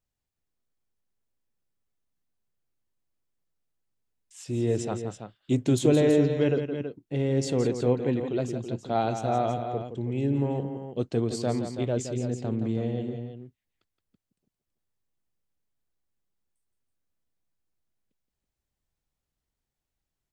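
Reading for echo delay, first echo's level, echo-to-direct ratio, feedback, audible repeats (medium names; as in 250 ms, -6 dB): 170 ms, -9.0 dB, -6.0 dB, no regular repeats, 2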